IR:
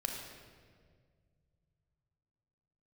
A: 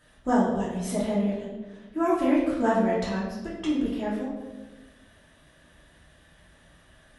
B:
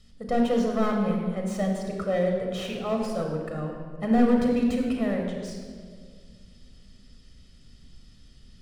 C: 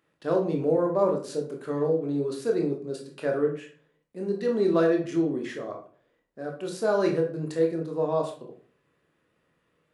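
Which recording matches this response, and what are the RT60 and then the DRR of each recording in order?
B; 1.2 s, 1.9 s, 0.45 s; -8.0 dB, 1.0 dB, 1.0 dB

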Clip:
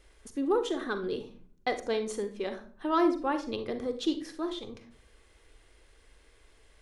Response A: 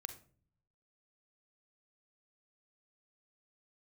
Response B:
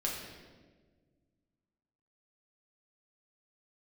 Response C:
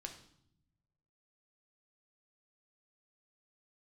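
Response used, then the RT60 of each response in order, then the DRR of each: A; 0.45 s, 1.5 s, 0.70 s; 8.5 dB, -3.5 dB, 3.0 dB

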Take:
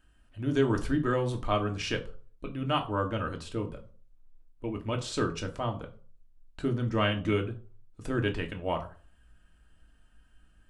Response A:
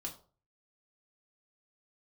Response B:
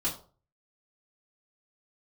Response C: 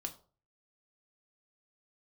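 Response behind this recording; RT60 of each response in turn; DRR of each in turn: C; 0.40 s, 0.40 s, 0.40 s; -1.5 dB, -8.0 dB, 3.5 dB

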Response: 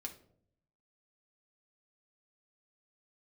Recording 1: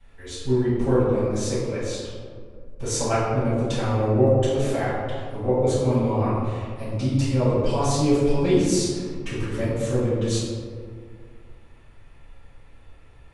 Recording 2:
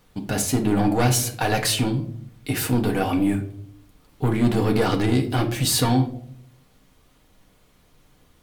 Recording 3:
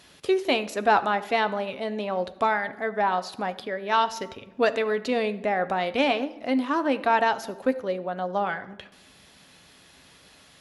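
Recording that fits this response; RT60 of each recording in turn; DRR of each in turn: 2; 2.0 s, 0.65 s, 1.0 s; -14.5 dB, 2.0 dB, 10.5 dB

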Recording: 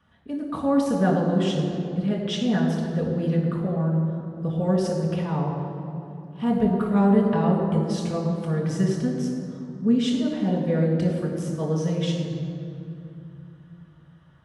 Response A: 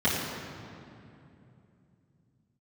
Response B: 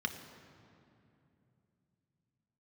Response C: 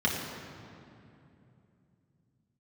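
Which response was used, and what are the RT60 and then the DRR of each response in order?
C; 2.8 s, 2.8 s, 2.8 s; -11.5 dB, 5.5 dB, -3.5 dB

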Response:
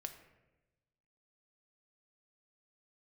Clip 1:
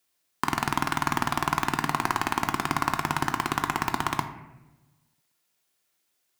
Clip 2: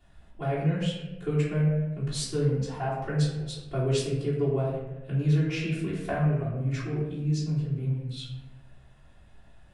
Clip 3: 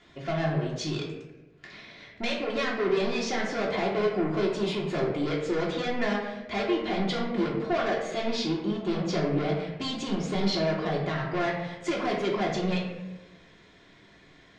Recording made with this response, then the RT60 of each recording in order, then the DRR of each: 1; 1.1 s, 1.0 s, 1.0 s; 5.5 dB, -12.5 dB, -4.0 dB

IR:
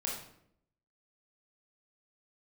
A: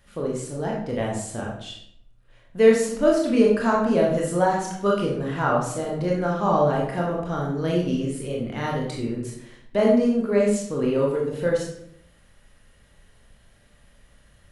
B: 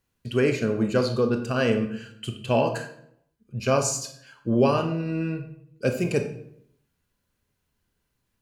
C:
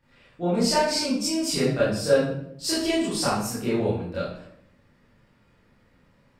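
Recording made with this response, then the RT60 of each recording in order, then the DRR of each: A; 0.70 s, 0.70 s, 0.70 s; -3.0 dB, 6.5 dB, -11.5 dB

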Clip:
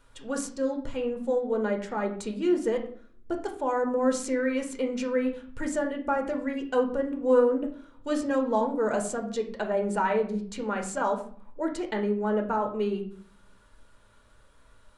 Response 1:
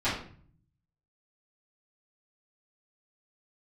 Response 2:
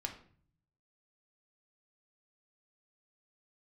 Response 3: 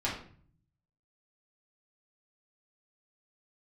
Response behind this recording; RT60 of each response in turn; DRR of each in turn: 2; 0.50 s, 0.50 s, 0.50 s; -14.5 dB, 3.0 dB, -7.0 dB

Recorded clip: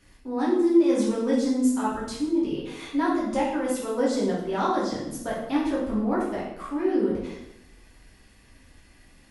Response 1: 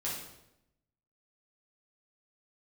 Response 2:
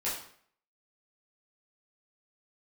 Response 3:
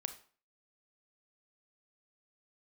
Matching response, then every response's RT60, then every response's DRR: 1; 0.85 s, 0.60 s, 0.45 s; -7.0 dB, -9.0 dB, 8.5 dB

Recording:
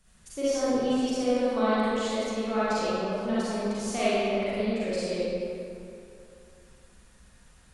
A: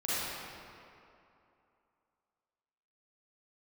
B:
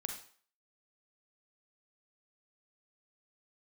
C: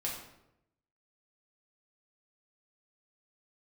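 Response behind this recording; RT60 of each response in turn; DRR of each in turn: A; 2.7 s, 0.50 s, 0.85 s; -11.5 dB, 3.0 dB, -4.5 dB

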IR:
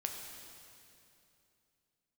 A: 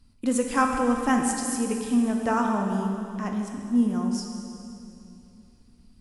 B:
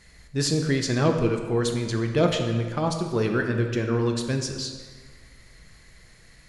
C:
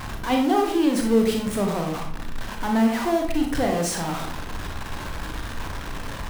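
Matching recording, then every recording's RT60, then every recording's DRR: A; 2.8 s, 1.6 s, 0.60 s; 2.0 dB, 3.5 dB, 1.5 dB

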